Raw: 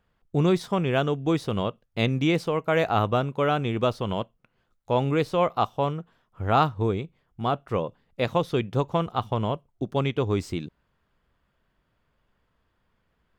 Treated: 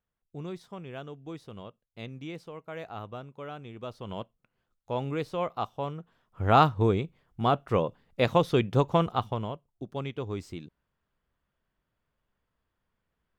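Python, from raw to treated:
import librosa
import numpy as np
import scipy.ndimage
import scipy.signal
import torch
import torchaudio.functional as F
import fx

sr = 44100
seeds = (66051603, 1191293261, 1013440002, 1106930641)

y = fx.gain(x, sr, db=fx.line((3.79, -17.0), (4.19, -8.0), (5.9, -8.0), (6.47, 1.0), (9.08, 1.0), (9.54, -9.5)))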